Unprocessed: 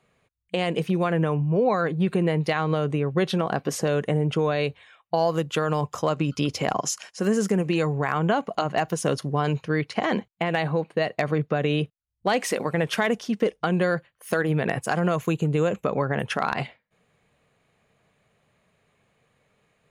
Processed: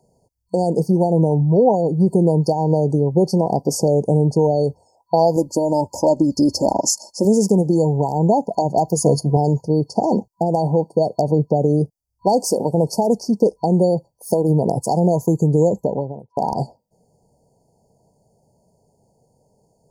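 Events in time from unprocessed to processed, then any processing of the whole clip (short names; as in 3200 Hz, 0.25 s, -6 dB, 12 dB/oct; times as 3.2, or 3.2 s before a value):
5.36–7.25 comb 3.4 ms
8.95–9.37 ripple EQ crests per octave 1.8, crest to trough 10 dB
15.66–16.37 studio fade out
whole clip: FFT band-reject 980–4400 Hz; gain +7.5 dB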